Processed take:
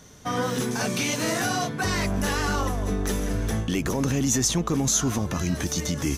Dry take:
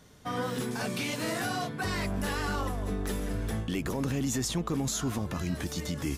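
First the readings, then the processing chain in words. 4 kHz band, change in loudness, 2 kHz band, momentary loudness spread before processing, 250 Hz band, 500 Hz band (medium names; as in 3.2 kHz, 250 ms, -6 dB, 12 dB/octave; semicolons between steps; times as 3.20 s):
+7.0 dB, +7.0 dB, +6.0 dB, 4 LU, +6.0 dB, +6.0 dB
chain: peaking EQ 6.1 kHz +10.5 dB 0.2 oct; trim +6 dB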